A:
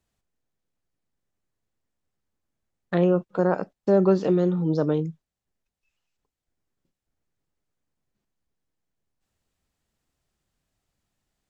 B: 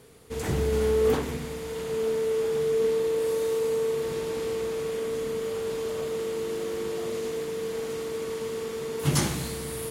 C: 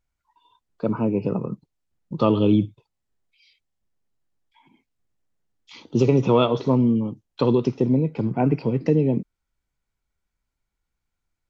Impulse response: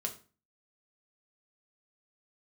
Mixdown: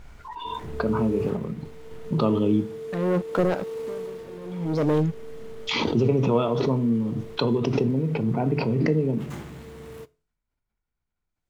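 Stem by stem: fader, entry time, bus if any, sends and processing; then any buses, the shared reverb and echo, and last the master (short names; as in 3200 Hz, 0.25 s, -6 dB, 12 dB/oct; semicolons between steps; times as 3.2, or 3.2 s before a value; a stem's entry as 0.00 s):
+1.0 dB, 0.00 s, bus A, no send, sample leveller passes 3; dB-linear tremolo 0.6 Hz, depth 33 dB
-7.5 dB, 0.15 s, bus A, send -12 dB, median filter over 9 samples; auto duck -7 dB, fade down 0.50 s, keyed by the third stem
-9.0 dB, 0.00 s, no bus, send -3.5 dB, LPF 2100 Hz 6 dB/oct; backwards sustainer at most 22 dB/s
bus A: 0.0 dB, compressor 1.5:1, threshold -28 dBFS, peak gain reduction 5.5 dB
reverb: on, RT60 0.35 s, pre-delay 4 ms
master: dry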